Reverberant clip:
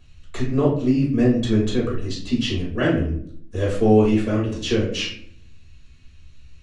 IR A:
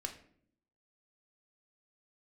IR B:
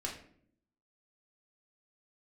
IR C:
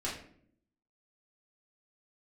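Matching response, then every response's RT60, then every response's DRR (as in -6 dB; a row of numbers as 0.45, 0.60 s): C; 0.60, 0.60, 0.60 s; 4.0, -1.5, -6.5 dB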